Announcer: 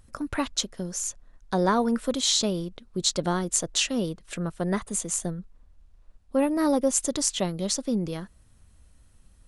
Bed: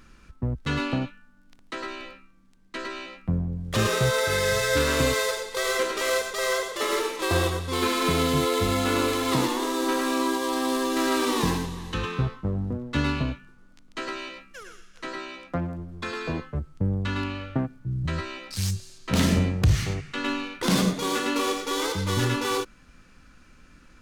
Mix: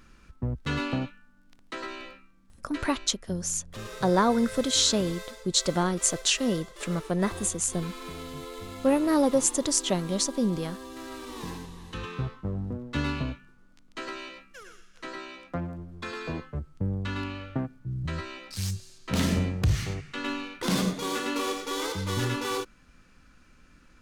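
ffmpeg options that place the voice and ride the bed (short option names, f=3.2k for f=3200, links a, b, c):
-filter_complex "[0:a]adelay=2500,volume=0.5dB[a];[1:a]volume=10dB,afade=t=out:st=2.58:d=0.58:silence=0.199526,afade=t=in:st=11.27:d=1.28:silence=0.237137[b];[a][b]amix=inputs=2:normalize=0"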